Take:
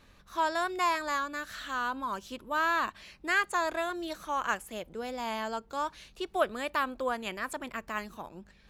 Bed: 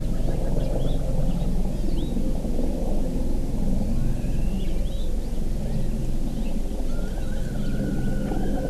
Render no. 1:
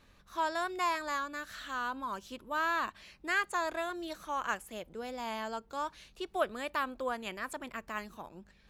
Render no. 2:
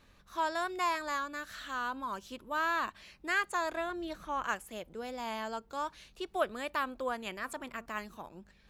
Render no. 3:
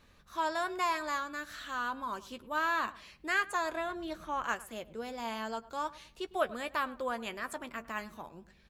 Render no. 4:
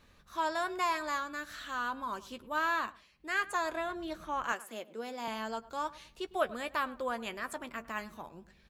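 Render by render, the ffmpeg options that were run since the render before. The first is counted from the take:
-af "volume=-3.5dB"
-filter_complex "[0:a]asettb=1/sr,asplit=3[a][b][c];[a]atrim=end=3.774[d];[b]atrim=start=3.77:end=4.44,asetpts=PTS-STARTPTS,afade=t=in:d=0.004:c=qsin,afade=t=out:st=0.666:d=0.004:c=qsin,bass=f=250:g=7,treble=f=4k:g=-7[e];[c]atrim=start=4.436[f];[d][e]acrossfade=d=0.004:c1=hsin:c2=qsin[g];[g][f]acrossfade=d=0.004:c1=qsin:c2=hsin,asettb=1/sr,asplit=3[h][i][j];[h]atrim=end=7.324[k];[i]atrim=start=7.32:end=7.86,asetpts=PTS-STARTPTS,afade=t=in:d=0.004:c=qsin,afade=t=out:st=0.536:d=0.004:c=qsin,bandreject=f=232.4:t=h:w=4,bandreject=f=464.8:t=h:w=4,bandreject=f=697.2:t=h:w=4,bandreject=f=929.6:t=h:w=4,bandreject=f=1.162k:t=h:w=4,bandreject=f=1.3944k:t=h:w=4[l];[j]atrim=start=7.856[m];[k][l]acrossfade=d=0.004:c1=hsin:c2=qsin[n];[n][m]acrossfade=d=0.004:c1=qsin:c2=hsin"
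-filter_complex "[0:a]asplit=2[a][b];[b]adelay=13,volume=-11dB[c];[a][c]amix=inputs=2:normalize=0,asplit=2[d][e];[e]adelay=105,lowpass=f=1.7k:p=1,volume=-17.5dB,asplit=2[f][g];[g]adelay=105,lowpass=f=1.7k:p=1,volume=0.33,asplit=2[h][i];[i]adelay=105,lowpass=f=1.7k:p=1,volume=0.33[j];[d][f][h][j]amix=inputs=4:normalize=0"
-filter_complex "[0:a]asettb=1/sr,asplit=3[a][b][c];[a]atrim=end=4.524[d];[b]atrim=start=4.52:end=5.28,asetpts=PTS-STARTPTS,afade=t=in:d=0.004:c=qsin,afade=t=out:st=0.756:d=0.004:c=qsin,highpass=f=210:w=0.5412,highpass=f=210:w=1.3066[e];[c]atrim=start=5.276[f];[d][e]acrossfade=d=0.004:c1=hsin:c2=qsin[g];[g][f]acrossfade=d=0.004:c1=qsin:c2=hsin,asplit=3[h][i][j];[h]atrim=end=3.08,asetpts=PTS-STARTPTS,afade=t=out:st=2.74:d=0.34:silence=0.237137[k];[i]atrim=start=3.08:end=3.12,asetpts=PTS-STARTPTS,volume=-12.5dB[l];[j]atrim=start=3.12,asetpts=PTS-STARTPTS,afade=t=in:d=0.34:silence=0.237137[m];[k][l][m]concat=n=3:v=0:a=1"

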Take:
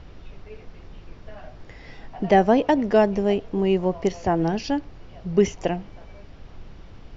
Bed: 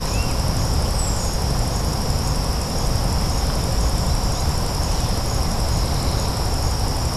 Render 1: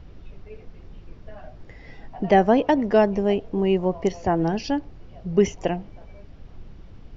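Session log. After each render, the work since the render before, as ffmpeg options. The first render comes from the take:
-af "afftdn=nr=6:nf=-45"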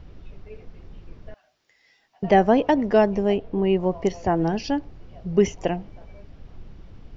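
-filter_complex "[0:a]asettb=1/sr,asplit=3[a][b][c];[a]atrim=end=1.344[d];[b]atrim=start=1.34:end=2.23,asetpts=PTS-STARTPTS,afade=t=in:d=0.004:c=qsin,afade=t=out:st=0.886:d=0.004:c=qsin,aderivative[e];[c]atrim=start=2.226[f];[d][e]acrossfade=d=0.004:c1=hsin:c2=qsin[g];[g][f]acrossfade=d=0.004:c1=qsin:c2=hsin,asettb=1/sr,asplit=3[h][i][j];[h]atrim=end=3.374[k];[i]atrim=start=3.37:end=3.8,asetpts=PTS-STARTPTS,afade=t=in:d=0.004:c=qsin,afade=t=out:st=0.426:d=0.004:c=qsin,lowpass=4.2k[l];[j]atrim=start=3.796[m];[k][l]acrossfade=d=0.004:c1=hsin:c2=qsin[n];[n][m]acrossfade=d=0.004:c1=qsin:c2=hsin"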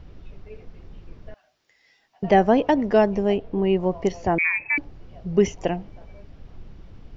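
-filter_complex "[0:a]asettb=1/sr,asplit=3[a][b][c];[a]atrim=end=4.384[d];[b]atrim=start=4.38:end=4.78,asetpts=PTS-STARTPTS,afade=t=in:d=0.004:c=qsin,afade=t=out:st=0.396:d=0.004:c=qsin,lowpass=f=2.2k:t=q:w=0.5098,lowpass=f=2.2k:t=q:w=0.6013,lowpass=f=2.2k:t=q:w=0.9,lowpass=f=2.2k:t=q:w=2.563,afreqshift=-2600[e];[c]atrim=start=4.776[f];[d][e]acrossfade=d=0.004:c1=hsin:c2=qsin[g];[g][f]acrossfade=d=0.004:c1=qsin:c2=hsin"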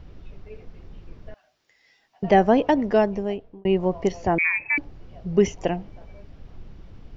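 -filter_complex "[0:a]asplit=2[a][b];[a]atrim=end=3.65,asetpts=PTS-STARTPTS,afade=t=out:st=2.58:d=1.07:c=qsin[c];[b]atrim=start=3.65,asetpts=PTS-STARTPTS,afade=t=in:d=0.004:c=hsin[d];[c][d]concat=n=2:v=0:a=1"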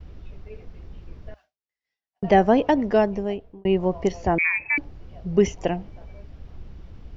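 -af "agate=range=-33dB:threshold=-44dB:ratio=3:detection=peak,equalizer=f=63:w=2.3:g=7.5"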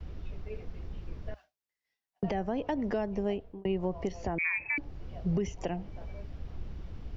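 -filter_complex "[0:a]acrossover=split=140[a][b];[b]acompressor=threshold=-24dB:ratio=3[c];[a][c]amix=inputs=2:normalize=0,alimiter=limit=-21.5dB:level=0:latency=1:release=371"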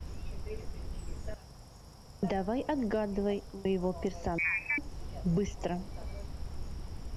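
-filter_complex "[1:a]volume=-31dB[a];[0:a][a]amix=inputs=2:normalize=0"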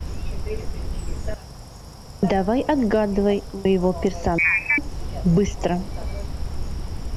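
-af "volume=12dB"

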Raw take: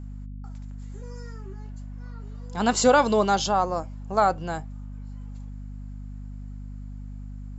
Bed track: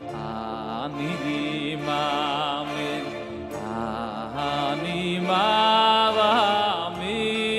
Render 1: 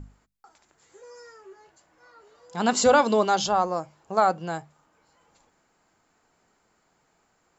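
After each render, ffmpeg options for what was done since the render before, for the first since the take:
-af "bandreject=f=50:t=h:w=6,bandreject=f=100:t=h:w=6,bandreject=f=150:t=h:w=6,bandreject=f=200:t=h:w=6,bandreject=f=250:t=h:w=6"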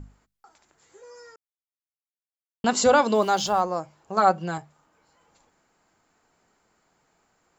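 -filter_complex "[0:a]asettb=1/sr,asplit=3[a][b][c];[a]atrim=end=3.154[d];[b]atrim=start=3.15:end=3.61,asetpts=PTS-STARTPTS,afade=t=in:d=0.004:c=qsin,afade=t=out:st=0.456:d=0.004:c=qsin,aeval=exprs='val(0)*gte(abs(val(0)),0.01)':c=same[e];[c]atrim=start=3.606[f];[d][e]acrossfade=d=0.004:c1=hsin:c2=qsin[g];[g][f]acrossfade=d=0.004:c1=qsin:c2=hsin,asettb=1/sr,asplit=3[h][i][j];[h]atrim=end=4.164[k];[i]atrim=start=4.16:end=4.58,asetpts=PTS-STARTPTS,afade=t=in:d=0.004:c=qsin,afade=t=out:st=0.416:d=0.004:c=qsin,aecho=1:1:5.3:0.63,atrim=end_sample=18522[l];[j]atrim=start=4.576[m];[k][l]acrossfade=d=0.004:c1=hsin:c2=qsin[n];[n][m]acrossfade=d=0.004:c1=qsin:c2=hsin,asplit=3[o][p][q];[o]atrim=end=1.36,asetpts=PTS-STARTPTS,afade=t=out:st=1.356:d=0.004:c=hsin[r];[p]atrim=start=1.36:end=2.64,asetpts=PTS-STARTPTS,volume=0[s];[q]atrim=start=2.64,asetpts=PTS-STARTPTS,afade=t=in:d=0.004:c=hsin[t];[r][s][t]concat=n=3:v=0:a=1"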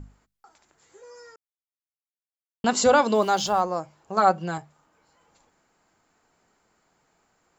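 -af anull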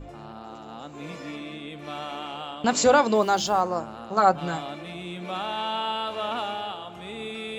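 -filter_complex "[1:a]volume=-10dB[a];[0:a][a]amix=inputs=2:normalize=0"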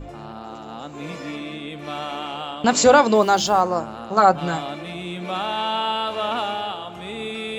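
-af "volume=5dB,alimiter=limit=-2dB:level=0:latency=1"

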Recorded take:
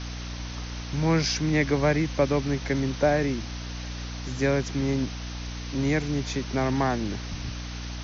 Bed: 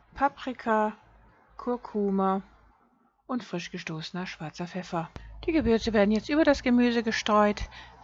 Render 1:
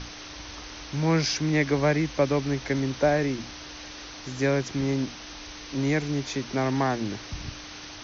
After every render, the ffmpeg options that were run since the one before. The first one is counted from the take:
-af "bandreject=f=60:t=h:w=6,bandreject=f=120:t=h:w=6,bandreject=f=180:t=h:w=6,bandreject=f=240:t=h:w=6"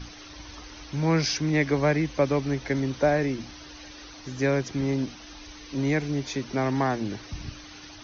-af "afftdn=nr=9:nf=-42"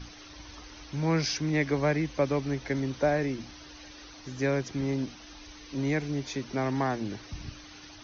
-af "volume=-3.5dB"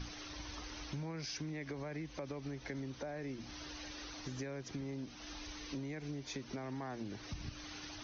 -af "alimiter=limit=-23.5dB:level=0:latency=1:release=98,acompressor=threshold=-40dB:ratio=6"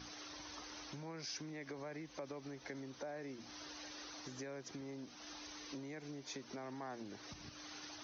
-af "highpass=f=410:p=1,equalizer=f=2.6k:t=o:w=1.3:g=-4.5"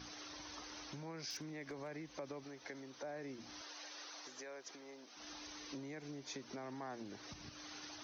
-filter_complex "[0:a]asettb=1/sr,asplit=3[a][b][c];[a]atrim=end=1.304[d];[b]atrim=start=1.3:end=1.88,asetpts=PTS-STARTPTS,afade=t=in:d=0.004:c=qsin,afade=t=out:st=0.576:d=0.004:c=qsin,aeval=exprs='0.0112*(abs(mod(val(0)/0.0112+3,4)-2)-1)':c=same[e];[c]atrim=start=1.876[f];[d][e]acrossfade=d=0.004:c1=hsin:c2=qsin[g];[g][f]acrossfade=d=0.004:c1=qsin:c2=hsin,asettb=1/sr,asplit=3[h][i][j];[h]atrim=end=2.444[k];[i]atrim=start=2.44:end=3.04,asetpts=PTS-STARTPTS,afade=t=in:d=0.004:c=qsin,afade=t=out:st=0.596:d=0.004:c=qsin,lowshelf=f=210:g=-10.5[l];[j]atrim=start=3.036[m];[k][l]acrossfade=d=0.004:c1=hsin:c2=qsin[n];[n][m]acrossfade=d=0.004:c1=qsin:c2=hsin,asettb=1/sr,asplit=3[o][p][q];[o]atrim=end=3.614[r];[p]atrim=start=3.61:end=5.17,asetpts=PTS-STARTPTS,afade=t=in:d=0.004:c=qsin,afade=t=out:st=1.556:d=0.004:c=qsin,highpass=480[s];[q]atrim=start=5.166[t];[r][s]acrossfade=d=0.004:c1=hsin:c2=qsin[u];[u][t]acrossfade=d=0.004:c1=qsin:c2=hsin"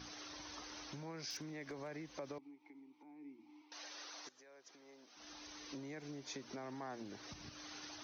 -filter_complex "[0:a]asettb=1/sr,asplit=3[a][b][c];[a]atrim=end=2.384[d];[b]atrim=start=2.38:end=3.72,asetpts=PTS-STARTPTS,afade=t=in:d=0.004:c=qsin,afade=t=out:st=1.336:d=0.004:c=qsin,asplit=3[e][f][g];[e]bandpass=f=300:t=q:w=8,volume=0dB[h];[f]bandpass=f=870:t=q:w=8,volume=-6dB[i];[g]bandpass=f=2.24k:t=q:w=8,volume=-9dB[j];[h][i][j]amix=inputs=3:normalize=0[k];[c]atrim=start=3.716[l];[d][k]acrossfade=d=0.004:c1=hsin:c2=qsin[m];[m][l]acrossfade=d=0.004:c1=qsin:c2=hsin,asplit=2[n][o];[n]atrim=end=4.29,asetpts=PTS-STARTPTS,afade=t=out:st=4.286:d=0.004:c=hsin:silence=0.158489[p];[o]atrim=start=4.29,asetpts=PTS-STARTPTS,afade=t=in:d=1.63:silence=0.158489[q];[p][q]concat=n=2:v=0:a=1"

